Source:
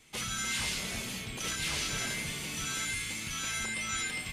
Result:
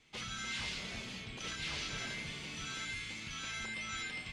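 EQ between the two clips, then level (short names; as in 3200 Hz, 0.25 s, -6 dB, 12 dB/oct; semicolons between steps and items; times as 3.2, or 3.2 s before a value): Chebyshev low-pass 4400 Hz, order 2; -5.0 dB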